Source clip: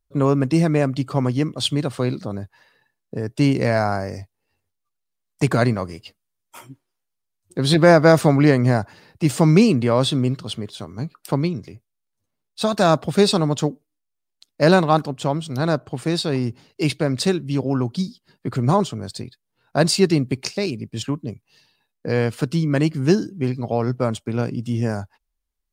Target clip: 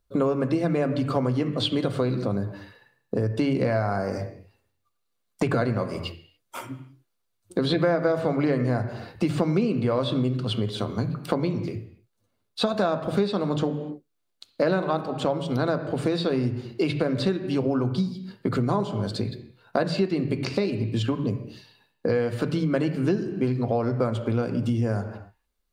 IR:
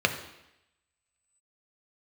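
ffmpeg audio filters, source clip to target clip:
-filter_complex "[0:a]acrossover=split=3900[link_01][link_02];[link_02]acompressor=threshold=-42dB:ratio=4:attack=1:release=60[link_03];[link_01][link_03]amix=inputs=2:normalize=0,asplit=2[link_04][link_05];[1:a]atrim=start_sample=2205,afade=type=out:start_time=0.35:duration=0.01,atrim=end_sample=15876,highshelf=frequency=6500:gain=-8.5[link_06];[link_05][link_06]afir=irnorm=-1:irlink=0,volume=-10.5dB[link_07];[link_04][link_07]amix=inputs=2:normalize=0,acompressor=threshold=-24dB:ratio=5,volume=2dB"

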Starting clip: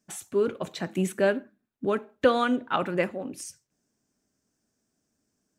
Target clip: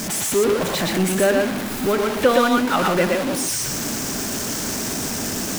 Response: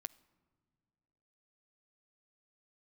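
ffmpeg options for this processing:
-filter_complex "[0:a]aeval=exprs='val(0)+0.5*0.0668*sgn(val(0))':channel_layout=same,asplit=2[link_01][link_02];[1:a]atrim=start_sample=2205,lowshelf=frequency=150:gain=-11.5,adelay=119[link_03];[link_02][link_03]afir=irnorm=-1:irlink=0,volume=3dB[link_04];[link_01][link_04]amix=inputs=2:normalize=0,volume=2.5dB"

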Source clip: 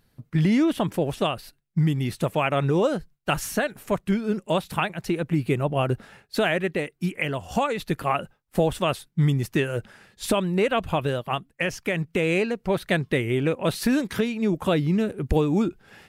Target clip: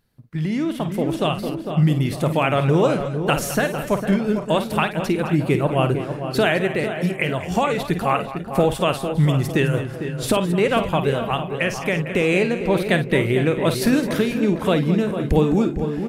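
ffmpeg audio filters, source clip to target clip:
ffmpeg -i in.wav -filter_complex "[0:a]asplit=2[link_01][link_02];[link_02]adelay=452,lowpass=frequency=1300:poles=1,volume=-8dB,asplit=2[link_03][link_04];[link_04]adelay=452,lowpass=frequency=1300:poles=1,volume=0.5,asplit=2[link_05][link_06];[link_06]adelay=452,lowpass=frequency=1300:poles=1,volume=0.5,asplit=2[link_07][link_08];[link_08]adelay=452,lowpass=frequency=1300:poles=1,volume=0.5,asplit=2[link_09][link_10];[link_10]adelay=452,lowpass=frequency=1300:poles=1,volume=0.5,asplit=2[link_11][link_12];[link_12]adelay=452,lowpass=frequency=1300:poles=1,volume=0.5[link_13];[link_03][link_05][link_07][link_09][link_11][link_13]amix=inputs=6:normalize=0[link_14];[link_01][link_14]amix=inputs=2:normalize=0,dynaudnorm=framelen=160:gausssize=13:maxgain=11.5dB,asplit=2[link_15][link_16];[link_16]aecho=0:1:52|211|486:0.299|0.2|0.141[link_17];[link_15][link_17]amix=inputs=2:normalize=0,volume=-4.5dB" out.wav

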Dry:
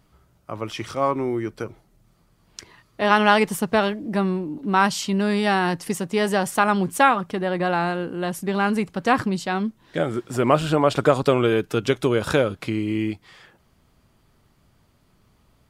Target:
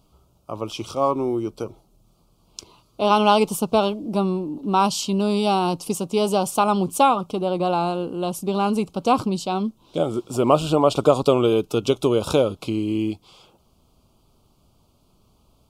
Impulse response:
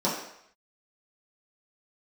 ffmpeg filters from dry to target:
-af "asuperstop=centerf=1800:order=4:qfactor=1.2,equalizer=frequency=130:width_type=o:width=1.4:gain=-3.5,volume=2dB"

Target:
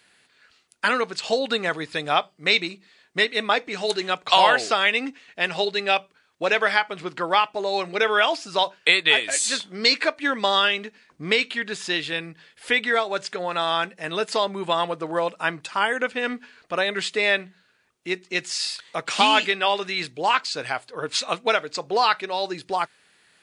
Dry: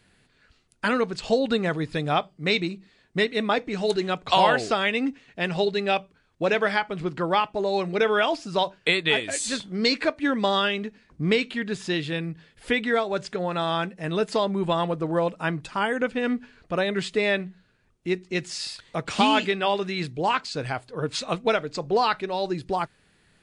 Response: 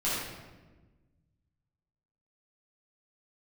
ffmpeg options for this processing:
-af "highpass=frequency=960:poles=1,volume=6dB"

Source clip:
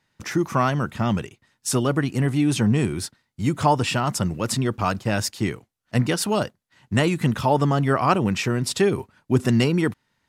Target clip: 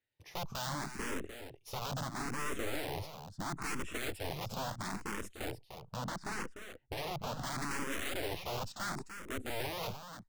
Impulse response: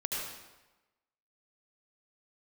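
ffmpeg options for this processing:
-filter_complex "[0:a]afwtdn=0.0631,asplit=2[link_01][link_02];[link_02]acompressor=threshold=-32dB:ratio=20,volume=-2.5dB[link_03];[link_01][link_03]amix=inputs=2:normalize=0,alimiter=limit=-14dB:level=0:latency=1:release=31,aeval=exprs='(mod(11.2*val(0)+1,2)-1)/11.2':channel_layout=same,asettb=1/sr,asplit=3[link_04][link_05][link_06];[link_04]atrim=end=5.504[link_07];[link_05]atrim=start=5.5:end=7.42,asetpts=PTS-STARTPTS,afade=type=in:duration=0.004:curve=qsin,afade=type=out:start_time=1.916:duration=0.004:curve=qsin,adynamicsmooth=sensitivity=5.5:basefreq=2000[link_08];[link_06]atrim=start=7.416[link_09];[link_07][link_08]acrossfade=duration=0.004:curve1=hsin:curve2=qsin[link_10];[link_10][link_09]acrossfade=duration=0.004:curve1=qsin:curve2=hsin,aeval=exprs='clip(val(0),-1,0.00944)':channel_layout=same,aecho=1:1:299:0.335,asplit=2[link_11][link_12];[link_12]afreqshift=0.74[link_13];[link_11][link_13]amix=inputs=2:normalize=1,volume=-5.5dB"

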